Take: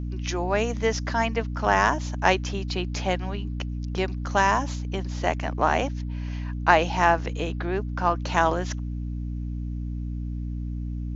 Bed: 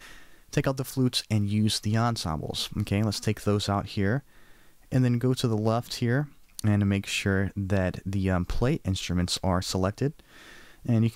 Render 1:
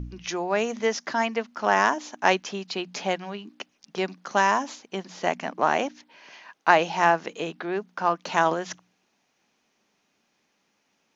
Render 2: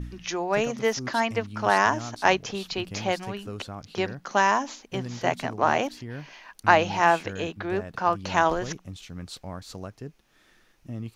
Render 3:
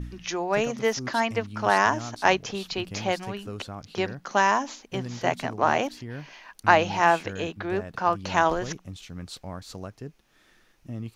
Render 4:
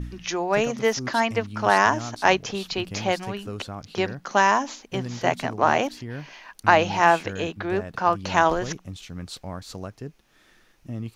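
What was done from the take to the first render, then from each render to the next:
hum removal 60 Hz, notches 5
mix in bed −12 dB
no processing that can be heard
level +2.5 dB; brickwall limiter −3 dBFS, peak gain reduction 3 dB

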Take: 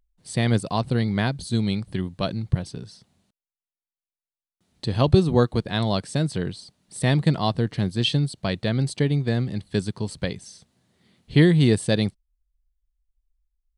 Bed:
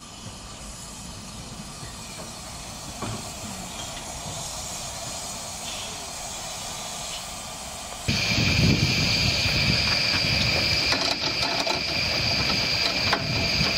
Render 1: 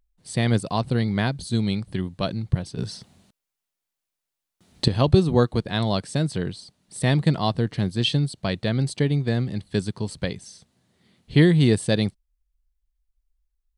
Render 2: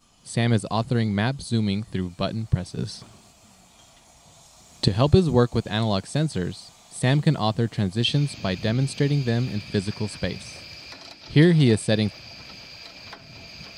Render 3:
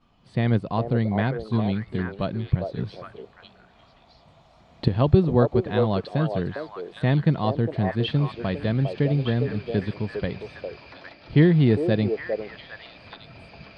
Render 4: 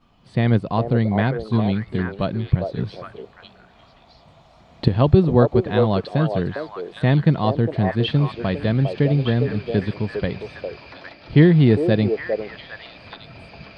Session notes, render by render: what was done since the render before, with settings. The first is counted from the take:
0:02.78–0:04.88: clip gain +10 dB
mix in bed −18.5 dB
high-frequency loss of the air 370 metres; echo through a band-pass that steps 405 ms, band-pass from 550 Hz, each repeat 1.4 octaves, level −0.5 dB
level +4 dB; brickwall limiter −1 dBFS, peak gain reduction 1.5 dB

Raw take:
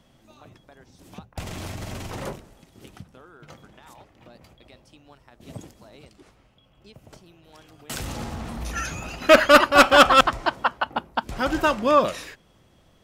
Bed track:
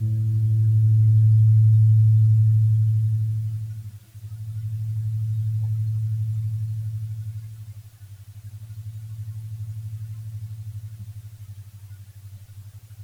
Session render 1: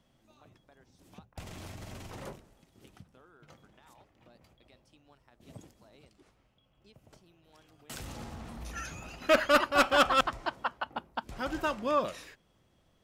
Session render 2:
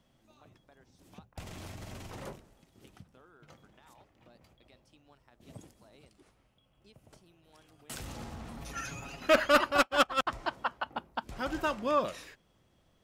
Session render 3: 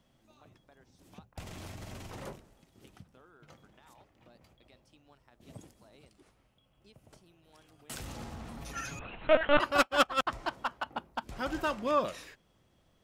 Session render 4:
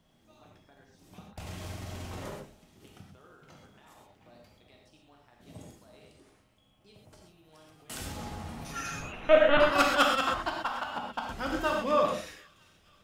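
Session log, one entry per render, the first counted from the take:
level −10.5 dB
0:05.55–0:07.95: parametric band 9,600 Hz +6 dB 0.38 octaves; 0:08.57–0:09.20: comb filter 7.2 ms; 0:09.77–0:10.27: expander for the loud parts 2.5 to 1, over −42 dBFS
0:08.99–0:09.60: linear-prediction vocoder at 8 kHz pitch kept; 0:10.40–0:11.90: hard clipping −24.5 dBFS
delay with a high-pass on its return 478 ms, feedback 65%, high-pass 2,400 Hz, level −22 dB; reverb whose tail is shaped and stops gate 150 ms flat, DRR −0.5 dB

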